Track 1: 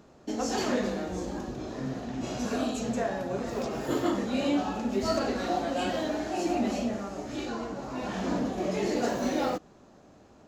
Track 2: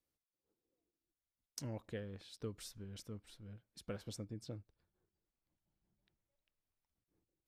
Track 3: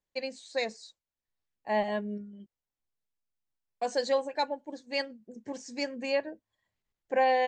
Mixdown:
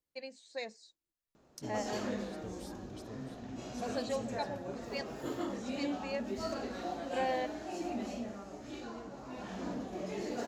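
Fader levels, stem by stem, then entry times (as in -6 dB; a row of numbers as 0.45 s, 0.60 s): -10.0 dB, -3.5 dB, -9.5 dB; 1.35 s, 0.00 s, 0.00 s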